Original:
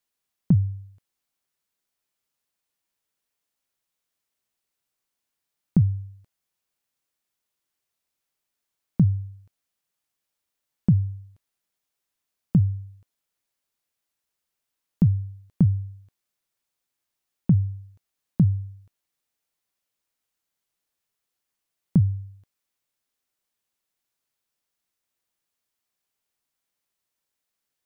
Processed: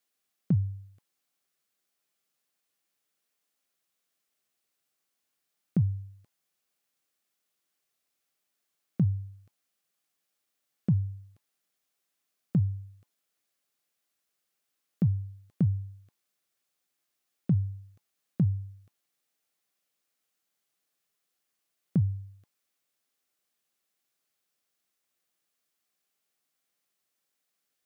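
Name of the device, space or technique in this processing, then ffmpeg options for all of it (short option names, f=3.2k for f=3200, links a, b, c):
PA system with an anti-feedback notch: -af "highpass=140,asuperstop=centerf=940:order=20:qfactor=7.8,alimiter=limit=-19dB:level=0:latency=1,volume=1.5dB"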